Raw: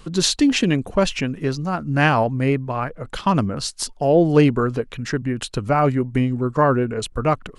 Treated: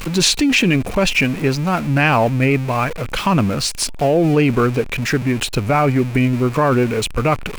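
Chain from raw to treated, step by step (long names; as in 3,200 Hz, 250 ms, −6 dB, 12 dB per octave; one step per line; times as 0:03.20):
converter with a step at zero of −28.5 dBFS
parametric band 2,400 Hz +10 dB 0.31 octaves
in parallel at −0.5 dB: compressor whose output falls as the input rises −17 dBFS, ratio −0.5
on the sum: level −3 dB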